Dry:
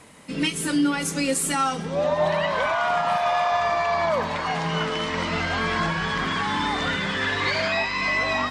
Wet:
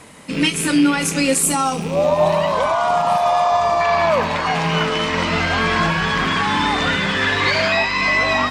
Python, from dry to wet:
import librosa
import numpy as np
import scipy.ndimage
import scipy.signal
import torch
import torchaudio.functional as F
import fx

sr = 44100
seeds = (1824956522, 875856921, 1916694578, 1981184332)

y = fx.rattle_buzz(x, sr, strikes_db=-35.0, level_db=-25.0)
y = fx.curve_eq(y, sr, hz=(1100.0, 1600.0, 11000.0), db=(0, -10, 5), at=(1.43, 3.81))
y = F.gain(torch.from_numpy(y), 6.5).numpy()